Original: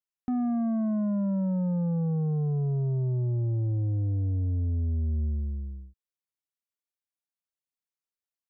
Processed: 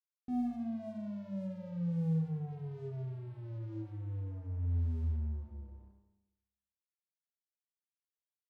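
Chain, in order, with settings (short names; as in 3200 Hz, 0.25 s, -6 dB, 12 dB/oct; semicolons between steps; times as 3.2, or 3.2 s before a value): steep low-pass 850 Hz 72 dB/oct; buzz 100 Hz, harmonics 10, -51 dBFS -9 dB/oct; resonator 82 Hz, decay 0.55 s, harmonics all, mix 90%; crossover distortion -58.5 dBFS; Schroeder reverb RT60 1 s, combs from 31 ms, DRR 3 dB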